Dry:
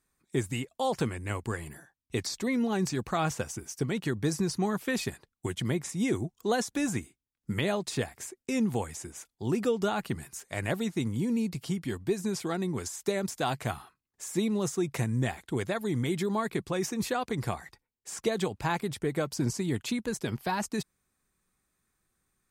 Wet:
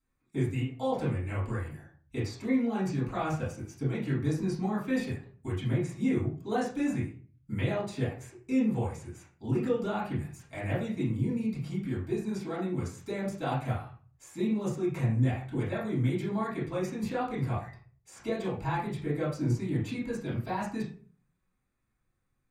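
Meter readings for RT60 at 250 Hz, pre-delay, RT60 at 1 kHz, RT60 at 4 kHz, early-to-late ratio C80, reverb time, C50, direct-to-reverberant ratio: 0.55 s, 4 ms, 0.35 s, 0.30 s, 9.5 dB, 0.40 s, 5.0 dB, -9.5 dB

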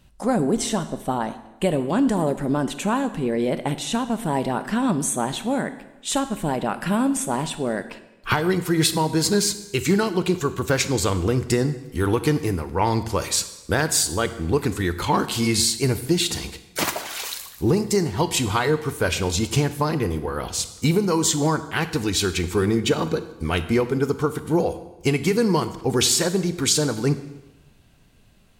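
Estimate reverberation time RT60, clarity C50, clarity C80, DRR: 1.0 s, 13.0 dB, 15.0 dB, 11.5 dB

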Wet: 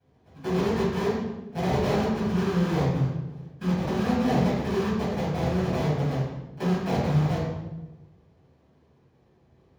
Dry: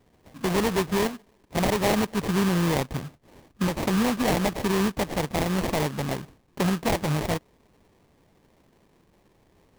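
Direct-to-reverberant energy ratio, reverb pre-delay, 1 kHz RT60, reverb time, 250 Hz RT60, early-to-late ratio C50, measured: -9.0 dB, 3 ms, 0.95 s, 1.1 s, 1.4 s, 0.0 dB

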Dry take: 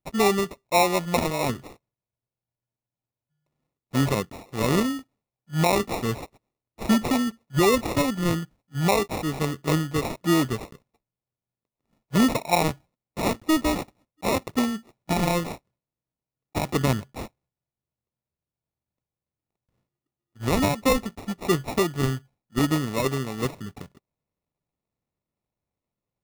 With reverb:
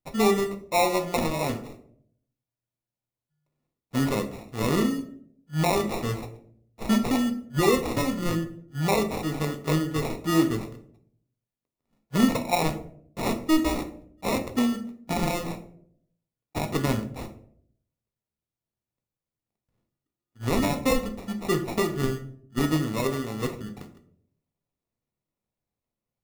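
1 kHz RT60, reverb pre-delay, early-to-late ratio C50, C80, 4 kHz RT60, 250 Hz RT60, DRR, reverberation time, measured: 0.50 s, 4 ms, 12.0 dB, 15.5 dB, 0.35 s, 0.85 s, 5.5 dB, 0.60 s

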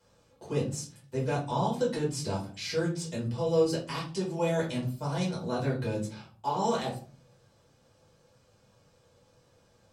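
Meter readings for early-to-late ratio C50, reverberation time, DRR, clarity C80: 8.5 dB, 0.40 s, -6.0 dB, 14.5 dB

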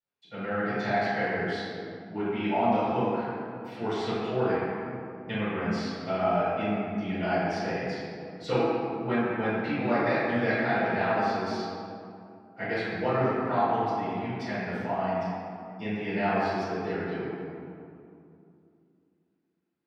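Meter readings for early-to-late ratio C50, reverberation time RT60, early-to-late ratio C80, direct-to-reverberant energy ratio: -4.5 dB, 2.6 s, -2.0 dB, -19.5 dB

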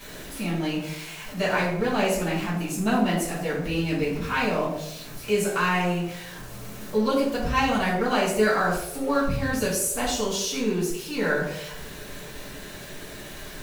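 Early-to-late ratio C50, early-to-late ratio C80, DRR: 3.5 dB, 6.5 dB, -10.5 dB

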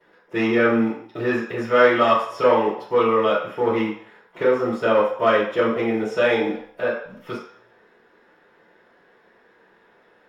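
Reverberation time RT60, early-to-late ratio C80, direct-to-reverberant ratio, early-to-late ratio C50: 0.60 s, 7.5 dB, -15.0 dB, 3.0 dB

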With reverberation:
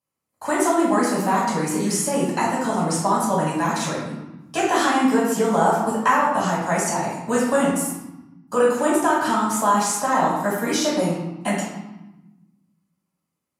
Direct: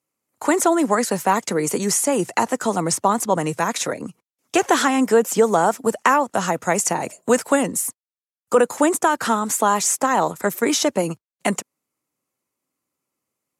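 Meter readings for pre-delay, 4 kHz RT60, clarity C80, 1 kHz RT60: 5 ms, 0.80 s, 4.0 dB, 1.0 s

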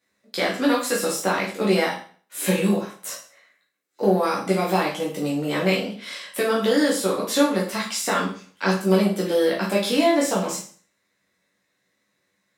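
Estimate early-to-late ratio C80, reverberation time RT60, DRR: 11.5 dB, 0.45 s, -4.5 dB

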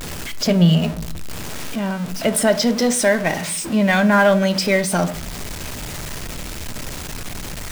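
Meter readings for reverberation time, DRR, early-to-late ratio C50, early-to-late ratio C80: 0.50 s, 10.5 dB, 17.0 dB, 20.5 dB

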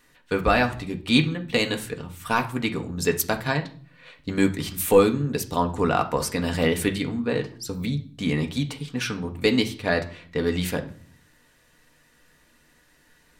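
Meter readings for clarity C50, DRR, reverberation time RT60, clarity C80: 14.0 dB, 3.0 dB, 0.50 s, 19.5 dB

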